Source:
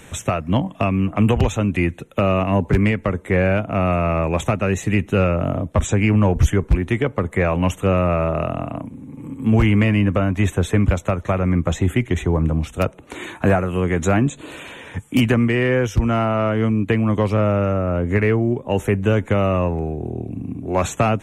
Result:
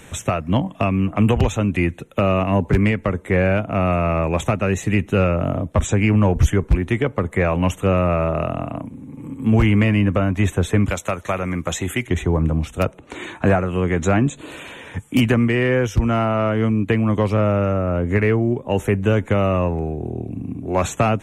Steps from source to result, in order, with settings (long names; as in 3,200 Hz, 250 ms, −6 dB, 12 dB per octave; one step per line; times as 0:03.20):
0:10.86–0:12.07: spectral tilt +2.5 dB per octave
0:12.99–0:14.24: low-pass filter 8,100 Hz 12 dB per octave